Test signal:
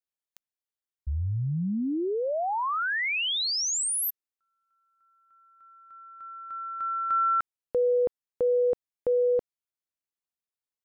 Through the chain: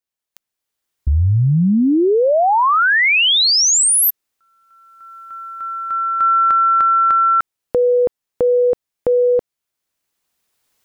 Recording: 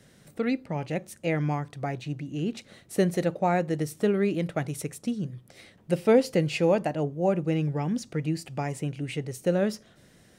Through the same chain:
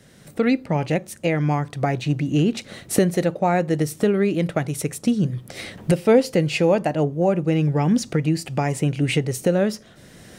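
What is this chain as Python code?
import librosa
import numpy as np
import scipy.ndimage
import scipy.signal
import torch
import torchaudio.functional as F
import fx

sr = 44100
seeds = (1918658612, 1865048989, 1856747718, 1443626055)

y = fx.recorder_agc(x, sr, target_db=-15.0, rise_db_per_s=13.0, max_gain_db=24)
y = F.gain(torch.from_numpy(y), 4.5).numpy()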